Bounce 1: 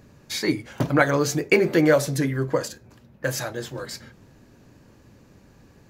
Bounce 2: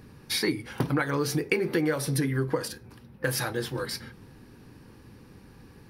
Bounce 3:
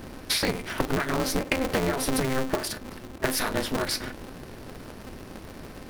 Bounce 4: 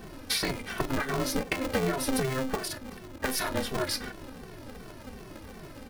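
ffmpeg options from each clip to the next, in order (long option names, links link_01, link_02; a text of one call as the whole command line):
ffmpeg -i in.wav -af "superequalizer=8b=0.398:15b=0.355:16b=1.78,acompressor=threshold=-25dB:ratio=6,volume=2dB" out.wav
ffmpeg -i in.wav -af "acompressor=threshold=-33dB:ratio=4,aeval=exprs='val(0)*sgn(sin(2*PI*130*n/s))':channel_layout=same,volume=9dB" out.wav
ffmpeg -i in.wav -filter_complex "[0:a]asplit=2[link_01][link_02];[link_02]adelay=2.2,afreqshift=-2.7[link_03];[link_01][link_03]amix=inputs=2:normalize=1" out.wav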